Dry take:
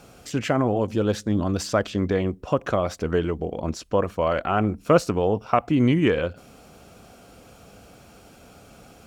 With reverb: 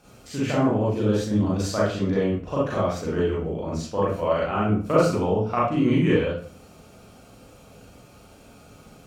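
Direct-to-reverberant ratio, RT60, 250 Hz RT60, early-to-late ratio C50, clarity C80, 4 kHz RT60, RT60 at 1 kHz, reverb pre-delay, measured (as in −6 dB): −7.5 dB, 0.45 s, 0.50 s, 0.5 dB, 7.5 dB, 0.35 s, 0.45 s, 33 ms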